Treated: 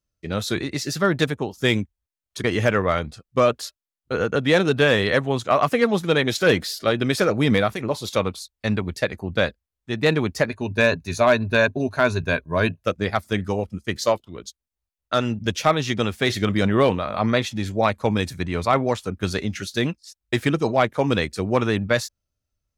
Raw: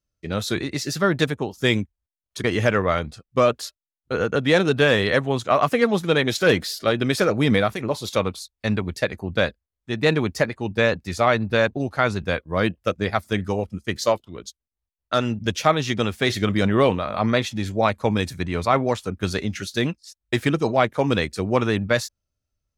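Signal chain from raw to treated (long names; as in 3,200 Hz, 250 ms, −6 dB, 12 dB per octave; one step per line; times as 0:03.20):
0:10.49–0:12.82: EQ curve with evenly spaced ripples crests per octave 1.5, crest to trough 10 dB
hard clipping −8 dBFS, distortion −31 dB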